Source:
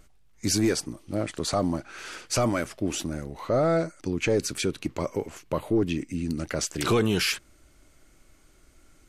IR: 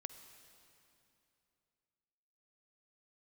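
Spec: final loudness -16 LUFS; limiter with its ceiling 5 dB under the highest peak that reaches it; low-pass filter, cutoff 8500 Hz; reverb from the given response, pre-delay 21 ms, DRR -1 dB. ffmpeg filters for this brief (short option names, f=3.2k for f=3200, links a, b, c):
-filter_complex "[0:a]lowpass=8.5k,alimiter=limit=-20.5dB:level=0:latency=1,asplit=2[a][b];[1:a]atrim=start_sample=2205,adelay=21[c];[b][c]afir=irnorm=-1:irlink=0,volume=5dB[d];[a][d]amix=inputs=2:normalize=0,volume=12dB"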